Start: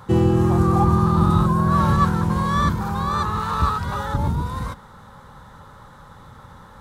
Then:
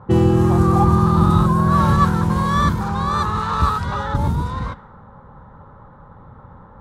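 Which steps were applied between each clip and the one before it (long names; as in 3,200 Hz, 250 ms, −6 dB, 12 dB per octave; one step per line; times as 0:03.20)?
low-pass that shuts in the quiet parts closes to 850 Hz, open at −17.5 dBFS
level +2.5 dB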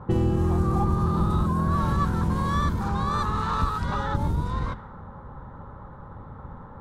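sub-octave generator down 1 octave, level −1 dB
downward compressor 2.5 to 1, threshold −25 dBFS, peak gain reduction 12 dB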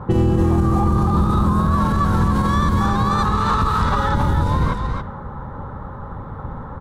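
single-tap delay 276 ms −5 dB
brickwall limiter −18 dBFS, peak gain reduction 7.5 dB
level +9 dB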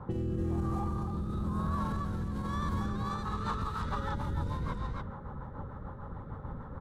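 downward compressor 4 to 1, threshold −20 dBFS, peak gain reduction 6.5 dB
rotating-speaker cabinet horn 1 Hz, later 6.7 Hz, at 0:02.61
level −9 dB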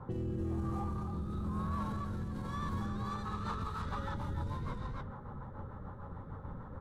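flanger 0.4 Hz, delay 7.5 ms, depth 3.9 ms, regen −49%
in parallel at −10 dB: hard clipping −39 dBFS, distortion −8 dB
on the sum: level −1.5 dB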